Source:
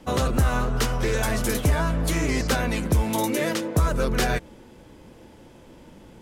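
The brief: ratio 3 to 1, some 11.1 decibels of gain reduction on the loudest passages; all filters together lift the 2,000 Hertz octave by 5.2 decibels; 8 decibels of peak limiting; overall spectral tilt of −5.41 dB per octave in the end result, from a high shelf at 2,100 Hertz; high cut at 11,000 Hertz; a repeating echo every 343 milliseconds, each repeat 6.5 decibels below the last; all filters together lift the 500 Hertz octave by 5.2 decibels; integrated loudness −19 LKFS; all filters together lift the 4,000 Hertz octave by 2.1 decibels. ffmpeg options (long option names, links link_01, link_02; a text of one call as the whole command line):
ffmpeg -i in.wav -af "lowpass=11000,equalizer=frequency=500:width_type=o:gain=6,equalizer=frequency=2000:width_type=o:gain=7.5,highshelf=frequency=2100:gain=-3.5,equalizer=frequency=4000:width_type=o:gain=3.5,acompressor=threshold=-31dB:ratio=3,alimiter=level_in=1.5dB:limit=-24dB:level=0:latency=1,volume=-1.5dB,aecho=1:1:343|686|1029|1372|1715|2058:0.473|0.222|0.105|0.0491|0.0231|0.0109,volume=15dB" out.wav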